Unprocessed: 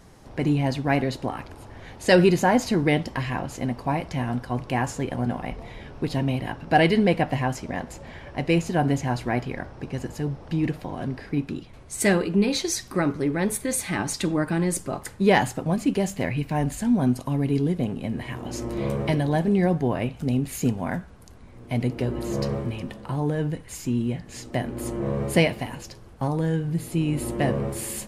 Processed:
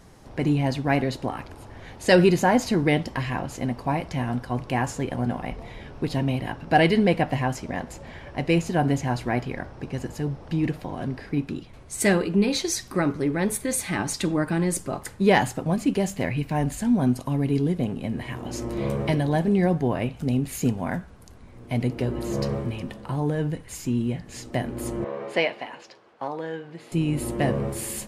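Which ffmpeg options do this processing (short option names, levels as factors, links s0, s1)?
-filter_complex "[0:a]asettb=1/sr,asplit=3[s0][s1][s2];[s0]atrim=end=25.044[s3];[s1]atrim=start=25.04:end=26.92,asetpts=PTS-STARTPTS,afade=t=in:d=0.004:c=qsin,afade=t=out:st=1.876:d=0.004:c=qsin,highpass=460,lowpass=3700[s4];[s2]atrim=start=26.916[s5];[s3][s4]acrossfade=d=0.004:c1=hsin:c2=qsin[s6];[s6][s5]acrossfade=d=0.004:c1=qsin:c2=hsin"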